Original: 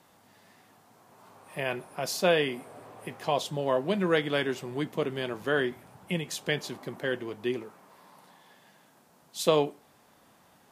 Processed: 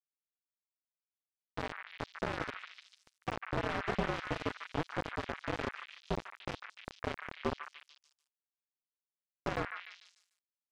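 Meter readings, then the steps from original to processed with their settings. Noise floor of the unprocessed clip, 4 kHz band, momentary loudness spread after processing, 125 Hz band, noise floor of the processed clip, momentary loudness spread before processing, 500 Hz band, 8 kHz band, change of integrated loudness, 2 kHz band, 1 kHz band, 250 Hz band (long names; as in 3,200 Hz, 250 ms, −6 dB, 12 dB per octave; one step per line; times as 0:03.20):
−61 dBFS, −12.0 dB, 13 LU, −6.0 dB, below −85 dBFS, 16 LU, −12.5 dB, −18.0 dB, −9.5 dB, −7.0 dB, −5.0 dB, −9.0 dB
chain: partials spread apart or drawn together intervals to 118%
brickwall limiter −25 dBFS, peak gain reduction 10 dB
downward compressor 2.5 to 1, threshold −35 dBFS, peak gain reduction 4.5 dB
power curve on the samples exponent 0.7
high-shelf EQ 3,100 Hz −12 dB
centre clipping without the shift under −30 dBFS
head-to-tape spacing loss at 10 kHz 26 dB
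echo through a band-pass that steps 148 ms, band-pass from 1,700 Hz, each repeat 0.7 octaves, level −1 dB
level +8.5 dB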